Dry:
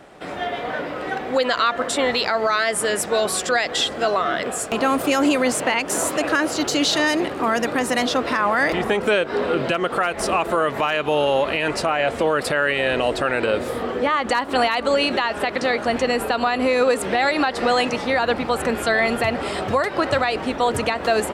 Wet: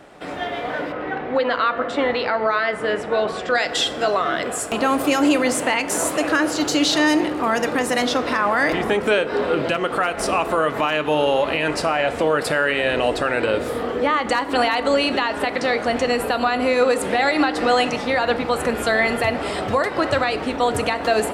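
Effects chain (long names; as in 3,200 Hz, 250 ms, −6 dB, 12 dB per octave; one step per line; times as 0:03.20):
0:00.92–0:03.55: low-pass filter 2,600 Hz 12 dB per octave
feedback delay network reverb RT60 1.1 s, high-frequency decay 0.55×, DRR 10.5 dB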